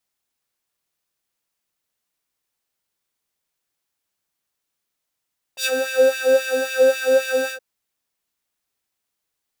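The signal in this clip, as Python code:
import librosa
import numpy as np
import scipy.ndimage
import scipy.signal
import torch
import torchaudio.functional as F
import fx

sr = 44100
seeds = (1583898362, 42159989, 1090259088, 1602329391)

y = fx.sub_patch_wobble(sr, seeds[0], note=72, wave='triangle', wave2='square', interval_st=0, level2_db=-8.5, sub_db=-15.0, noise_db=-23.0, kind='highpass', cutoff_hz=440.0, q=1.6, env_oct=2.5, env_decay_s=0.12, env_sustain_pct=40, attack_ms=76.0, decay_s=0.06, sustain_db=-10.0, release_s=0.09, note_s=1.93, lfo_hz=3.7, wobble_oct=1.4)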